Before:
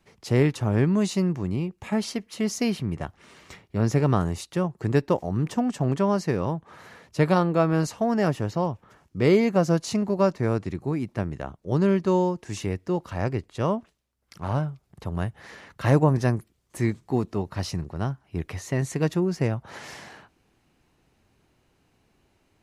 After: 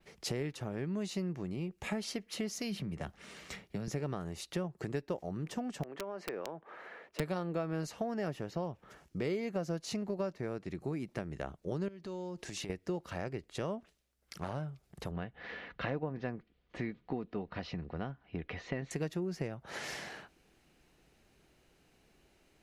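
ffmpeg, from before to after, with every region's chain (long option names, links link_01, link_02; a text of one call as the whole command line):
ffmpeg -i in.wav -filter_complex "[0:a]asettb=1/sr,asplit=3[link_01][link_02][link_03];[link_01]atrim=end=2.574[link_04];[link_02]atrim=start=2.57:end=3.88,asetpts=PTS-STARTPTS,afade=type=in:duration=0.004:curve=qsin,afade=type=out:start_time=1.306:duration=0.004:curve=qsin,equalizer=frequency=200:width_type=o:width=0.23:gain=6.5,bandreject=frequency=360:width=12,acrossover=split=130|3000[link_05][link_06][link_07];[link_06]acompressor=threshold=-30dB:ratio=3:attack=3.2:release=140:knee=2.83:detection=peak[link_08];[link_05][link_08][link_07]amix=inputs=3:normalize=0[link_09];[link_03]atrim=start=3.876[link_10];[link_04][link_09]acrossfade=duration=0.004:curve1=hsin:curve2=qsin[link_11];[link_11][link_10]acrossfade=duration=0.004:curve1=qsin:curve2=hsin,asettb=1/sr,asplit=3[link_12][link_13][link_14];[link_12]atrim=end=5.834[link_15];[link_13]atrim=start=5.83:end=7.2,asetpts=PTS-STARTPTS,afade=type=in:duration=0.004:curve=qsin,afade=type=out:start_time=1.366:duration=0.004:curve=qsin,acrossover=split=290 2700:gain=0.0794 1 0.0794[link_16][link_17][link_18];[link_16][link_17][link_18]amix=inputs=3:normalize=0,acompressor=threshold=-33dB:ratio=16:attack=3.2:release=140:knee=1:detection=peak,aeval=exprs='(mod(23.7*val(0)+1,2)-1)/23.7':channel_layout=same[link_19];[link_14]atrim=start=7.196[link_20];[link_15][link_19]acrossfade=duration=0.004:curve1=hsin:curve2=qsin[link_21];[link_21][link_20]acrossfade=duration=0.004:curve1=qsin:curve2=hsin,asettb=1/sr,asplit=3[link_22][link_23][link_24];[link_22]atrim=end=11.884[link_25];[link_23]atrim=start=11.88:end=12.7,asetpts=PTS-STARTPTS,afade=type=in:duration=0.004:curve=qsin,afade=type=out:start_time=0.816:duration=0.004:curve=qsin,equalizer=frequency=4000:width_type=o:width=0.87:gain=4.5,acompressor=threshold=-36dB:ratio=8:attack=3.2:release=140:knee=1:detection=peak[link_26];[link_24]atrim=start=12.696[link_27];[link_25][link_26]acrossfade=duration=0.004:curve1=hsin:curve2=qsin[link_28];[link_28][link_27]acrossfade=duration=0.004:curve1=qsin:curve2=hsin,asettb=1/sr,asplit=3[link_29][link_30][link_31];[link_29]atrim=end=15.114[link_32];[link_30]atrim=start=15.11:end=18.91,asetpts=PTS-STARTPTS,afade=type=in:duration=0.004:curve=qsin,afade=type=out:start_time=3.796:duration=0.004:curve=qsin,lowpass=frequency=3600:width=0.5412,lowpass=frequency=3600:width=1.3066,aecho=1:1:4.1:0.31,atrim=end_sample=167580[link_33];[link_31]atrim=start=18.906[link_34];[link_32][link_33]acrossfade=duration=0.004:curve1=hsin:curve2=qsin[link_35];[link_35][link_34]acrossfade=duration=0.004:curve1=qsin:curve2=hsin,adynamicequalizer=threshold=0.00178:dfrequency=8300:dqfactor=0.91:tfrequency=8300:tqfactor=0.91:attack=5:release=100:ratio=0.375:range=3:mode=cutabove:tftype=bell,acompressor=threshold=-32dB:ratio=6,equalizer=frequency=100:width_type=o:width=0.67:gain=-11,equalizer=frequency=250:width_type=o:width=0.67:gain=-4,equalizer=frequency=1000:width_type=o:width=0.67:gain=-6,volume=1dB" out.wav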